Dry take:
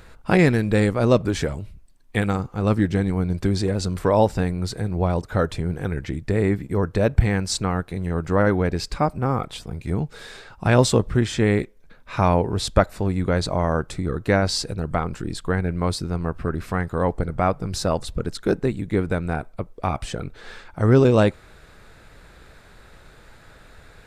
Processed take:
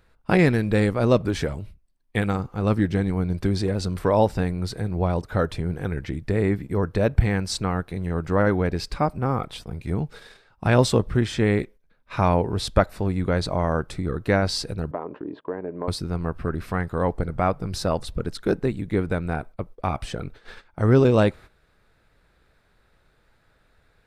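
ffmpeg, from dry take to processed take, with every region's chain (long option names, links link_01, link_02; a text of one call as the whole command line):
ffmpeg -i in.wav -filter_complex "[0:a]asettb=1/sr,asplit=3[link_01][link_02][link_03];[link_01]atrim=end=14.914[link_04];[link_02]atrim=start=14.91:end=15.88,asetpts=PTS-STARTPTS,afade=type=in:duration=0.004:curve=qsin,afade=type=out:start_time=0.966:duration=0.004:curve=qsin,highpass=240,equalizer=frequency=290:width_type=q:width=4:gain=10,equalizer=frequency=420:width_type=q:width=4:gain=9,equalizer=frequency=600:width_type=q:width=4:gain=9,equalizer=frequency=990:width_type=q:width=4:gain=8,equalizer=frequency=1400:width_type=q:width=4:gain=-7,equalizer=frequency=2200:width_type=q:width=4:gain=-9,lowpass=frequency=2400:width=0.5412,lowpass=frequency=2400:width=1.3066,acompressor=threshold=-31dB:ratio=2:attack=3.2:release=140:knee=1:detection=peak[link_05];[link_03]atrim=start=15.876[link_06];[link_04][link_05]acrossfade=duration=0.004:curve1=hsin:curve2=qsin[link_07];[link_07][link_06]acrossfade=duration=0.004:curve1=qsin:curve2=hsin,agate=range=-13dB:threshold=-38dB:ratio=16:detection=peak,equalizer=frequency=7200:width_type=o:width=0.46:gain=-5.5,volume=-1.5dB" out.wav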